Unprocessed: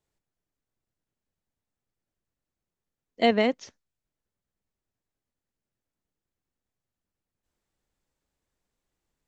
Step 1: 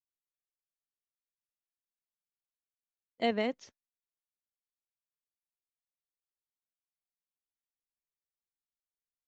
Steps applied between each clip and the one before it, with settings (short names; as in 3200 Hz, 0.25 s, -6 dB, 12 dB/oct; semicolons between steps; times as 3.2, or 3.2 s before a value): gate -45 dBFS, range -21 dB; gain -8.5 dB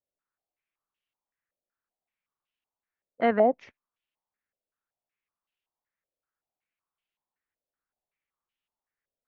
stepped low-pass 5.3 Hz 580–2900 Hz; gain +5 dB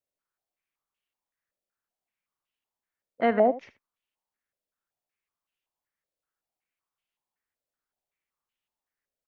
echo 77 ms -16 dB